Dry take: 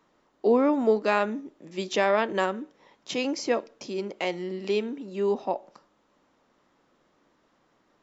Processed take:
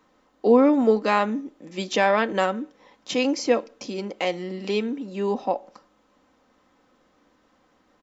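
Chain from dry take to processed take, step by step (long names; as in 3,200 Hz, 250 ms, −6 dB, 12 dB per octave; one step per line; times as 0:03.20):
parametric band 71 Hz +6.5 dB 0.77 octaves
comb filter 3.9 ms, depth 41%
level +3 dB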